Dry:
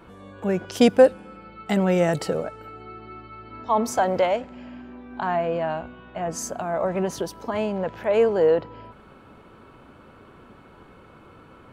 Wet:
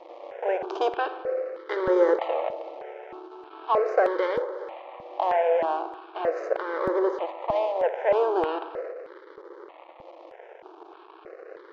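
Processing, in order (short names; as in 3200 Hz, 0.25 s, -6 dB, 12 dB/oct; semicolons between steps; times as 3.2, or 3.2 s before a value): per-bin compression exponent 0.6; high shelf 4100 Hz -5 dB; backlash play -25 dBFS; brick-wall FIR band-pass 320–7500 Hz; air absorption 240 m; darkening echo 60 ms, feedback 80%, low-pass 2500 Hz, level -13 dB; step phaser 3.2 Hz 410–2600 Hz; gain +1.5 dB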